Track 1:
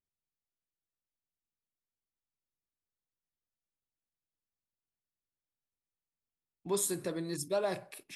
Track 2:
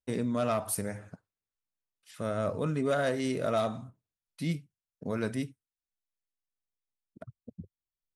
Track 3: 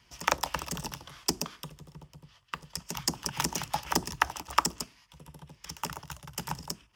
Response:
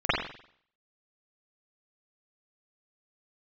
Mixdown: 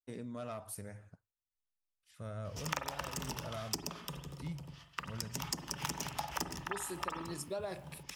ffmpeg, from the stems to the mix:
-filter_complex "[0:a]acrusher=bits=10:mix=0:aa=0.000001,volume=-2dB,asplit=2[link_01][link_02];[1:a]asubboost=boost=8.5:cutoff=110,volume=-12dB[link_03];[2:a]adelay=2450,volume=2dB,asplit=2[link_04][link_05];[link_05]volume=-22dB[link_06];[link_02]apad=whole_len=414764[link_07];[link_04][link_07]sidechaincompress=threshold=-60dB:ratio=8:attack=7:release=113[link_08];[3:a]atrim=start_sample=2205[link_09];[link_06][link_09]afir=irnorm=-1:irlink=0[link_10];[link_01][link_03][link_08][link_10]amix=inputs=4:normalize=0,acompressor=threshold=-38dB:ratio=3"

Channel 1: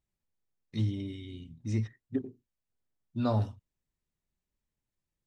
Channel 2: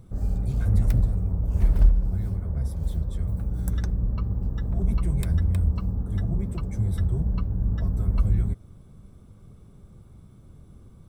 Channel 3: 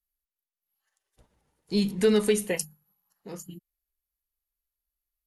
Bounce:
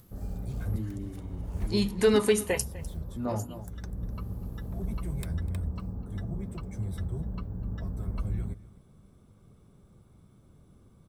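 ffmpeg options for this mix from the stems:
ffmpeg -i stem1.wav -i stem2.wav -i stem3.wav -filter_complex "[0:a]lowpass=1200,volume=-1.5dB,asplit=3[link_01][link_02][link_03];[link_02]volume=-13dB[link_04];[1:a]volume=-4dB,asplit=2[link_05][link_06];[link_06]volume=-19.5dB[link_07];[2:a]equalizer=frequency=1000:width=1.5:gain=7.5,acompressor=mode=upward:threshold=-44dB:ratio=2.5,volume=-0.5dB,asplit=2[link_08][link_09];[link_09]volume=-19.5dB[link_10];[link_03]apad=whole_len=488986[link_11];[link_05][link_11]sidechaincompress=threshold=-40dB:ratio=8:attack=16:release=547[link_12];[link_04][link_07][link_10]amix=inputs=3:normalize=0,aecho=0:1:251:1[link_13];[link_01][link_12][link_08][link_13]amix=inputs=4:normalize=0,lowshelf=frequency=110:gain=-9" out.wav

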